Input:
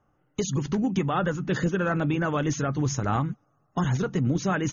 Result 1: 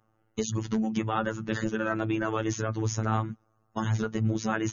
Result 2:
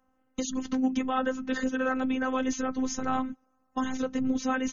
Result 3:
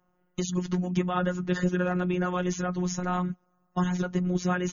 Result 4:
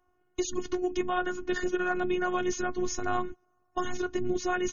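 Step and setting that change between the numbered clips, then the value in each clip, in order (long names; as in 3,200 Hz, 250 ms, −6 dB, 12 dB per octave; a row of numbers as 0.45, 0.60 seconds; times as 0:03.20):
phases set to zero, frequency: 110, 260, 180, 360 Hertz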